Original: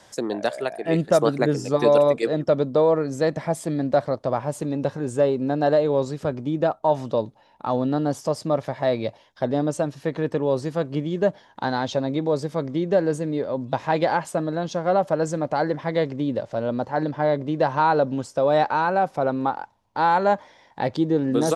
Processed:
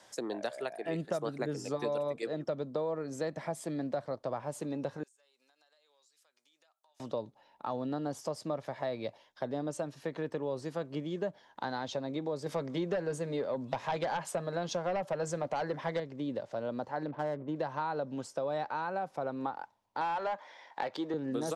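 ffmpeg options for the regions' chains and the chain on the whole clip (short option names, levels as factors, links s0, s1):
-filter_complex "[0:a]asettb=1/sr,asplit=3[s0][s1][s2];[s0]atrim=end=5.034[s3];[s1]atrim=start=5.03:end=7,asetpts=PTS-STARTPTS,afade=t=in:d=0.004:c=qsin,afade=t=out:st=1.966:d=0.004:c=qsin,highpass=f=1400:p=1,aderivative,acompressor=threshold=0.00112:ratio=10:attack=3.2:release=140:knee=1:detection=peak[s4];[s2]atrim=start=6.996[s5];[s3][s4]acrossfade=d=0.004:c1=hsin:c2=qsin[s6];[s6][s5]acrossfade=d=0.004:c1=qsin:c2=hsin,asettb=1/sr,asplit=3[s7][s8][s9];[s7]atrim=end=12.464[s10];[s8]atrim=start=12.46:end=16,asetpts=PTS-STARTPTS,afade=t=in:d=0.004:c=qsin,afade=t=out:st=3.536:d=0.004:c=qsin,lowshelf=f=200:g=-6.5,bandreject=f=310:w=7.9,aeval=exprs='0.355*sin(PI/2*1.78*val(0)/0.355)':c=same[s11];[s9]atrim=start=15.996[s12];[s10][s11]acrossfade=d=0.004:c1=hsin:c2=qsin[s13];[s13][s12]acrossfade=d=0.004:c1=qsin:c2=hsin,asettb=1/sr,asplit=3[s14][s15][s16];[s14]atrim=end=17.064[s17];[s15]atrim=start=17.06:end=17.56,asetpts=PTS-STARTPTS,afade=t=in:d=0.004:c=qsin,afade=t=out:st=0.496:d=0.004:c=qsin,aemphasis=mode=reproduction:type=75fm,adynamicsmooth=sensitivity=4.5:basefreq=1000[s18];[s16]atrim=start=17.556[s19];[s17][s18]acrossfade=d=0.004:c1=hsin:c2=qsin[s20];[s20][s19]acrossfade=d=0.004:c1=qsin:c2=hsin,asettb=1/sr,asplit=3[s21][s22][s23];[s21]atrim=end=20.014[s24];[s22]atrim=start=20.01:end=21.14,asetpts=PTS-STARTPTS,afade=t=in:d=0.004:c=qsin,afade=t=out:st=1.126:d=0.004:c=qsin,highpass=f=380:p=1,asplit=2[s25][s26];[s26]highpass=f=720:p=1,volume=5.62,asoftclip=type=tanh:threshold=0.335[s27];[s25][s27]amix=inputs=2:normalize=0,lowpass=f=2700:p=1,volume=0.501[s28];[s23]atrim=start=21.136[s29];[s24][s28]acrossfade=d=0.004:c1=hsin:c2=qsin[s30];[s30][s29]acrossfade=d=0.004:c1=qsin:c2=hsin,lowshelf=f=160:g=-12,acrossover=split=170[s31][s32];[s32]acompressor=threshold=0.0501:ratio=4[s33];[s31][s33]amix=inputs=2:normalize=0,volume=0.473"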